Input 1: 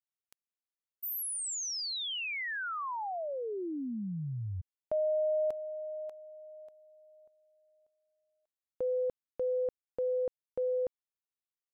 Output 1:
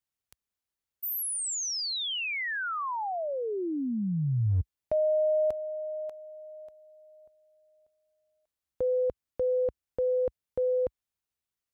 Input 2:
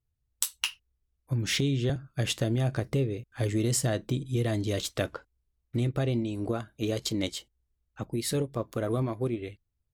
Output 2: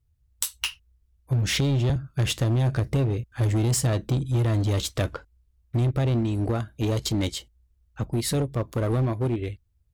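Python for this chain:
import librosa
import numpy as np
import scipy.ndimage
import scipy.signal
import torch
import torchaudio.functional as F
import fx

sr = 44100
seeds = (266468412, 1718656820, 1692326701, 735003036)

p1 = fx.peak_eq(x, sr, hz=61.0, db=11.5, octaves=2.1)
p2 = 10.0 ** (-26.0 / 20.0) * (np.abs((p1 / 10.0 ** (-26.0 / 20.0) + 3.0) % 4.0 - 2.0) - 1.0)
y = p1 + (p2 * librosa.db_to_amplitude(-4.5))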